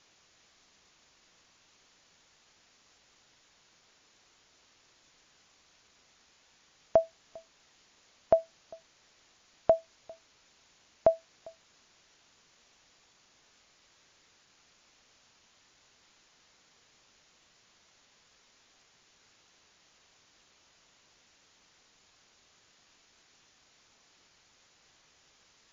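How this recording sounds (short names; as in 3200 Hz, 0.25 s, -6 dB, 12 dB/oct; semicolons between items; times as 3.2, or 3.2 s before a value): a quantiser's noise floor 10-bit, dither triangular; MP3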